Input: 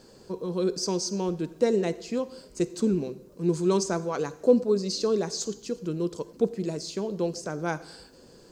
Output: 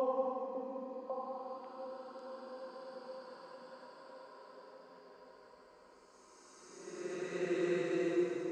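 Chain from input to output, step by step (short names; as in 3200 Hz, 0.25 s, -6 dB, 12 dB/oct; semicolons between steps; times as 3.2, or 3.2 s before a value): band-pass sweep 570 Hz -> 6300 Hz, 1.92–3.99; Paulstretch 20×, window 0.10 s, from 2.23; delay with a stepping band-pass 0.548 s, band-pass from 300 Hz, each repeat 1.4 oct, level -1 dB; gain +5.5 dB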